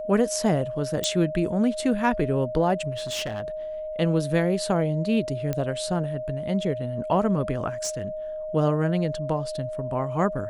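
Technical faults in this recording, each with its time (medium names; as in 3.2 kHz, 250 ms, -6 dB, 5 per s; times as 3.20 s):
whine 620 Hz -30 dBFS
1.04 s: pop -10 dBFS
2.91–3.48 s: clipped -26 dBFS
5.53 s: pop -14 dBFS
7.84–8.08 s: clipped -23 dBFS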